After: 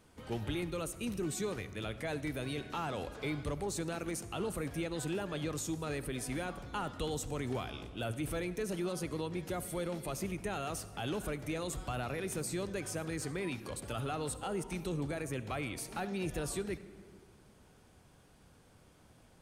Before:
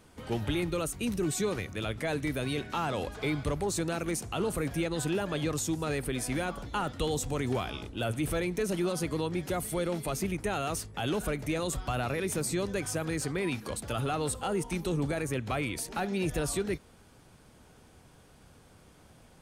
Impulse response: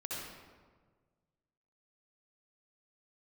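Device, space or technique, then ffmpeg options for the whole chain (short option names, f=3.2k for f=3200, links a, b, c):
compressed reverb return: -filter_complex "[0:a]asplit=2[a][b];[1:a]atrim=start_sample=2205[c];[b][c]afir=irnorm=-1:irlink=0,acompressor=threshold=-31dB:ratio=6,volume=-9.5dB[d];[a][d]amix=inputs=2:normalize=0,volume=-7dB"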